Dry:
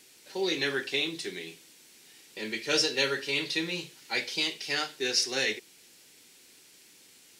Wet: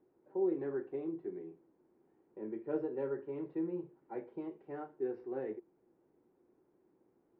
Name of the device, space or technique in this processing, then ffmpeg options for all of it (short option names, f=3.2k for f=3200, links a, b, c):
under water: -af "lowpass=f=1k:w=0.5412,lowpass=f=1k:w=1.3066,equalizer=f=350:t=o:w=0.32:g=9,volume=-7dB"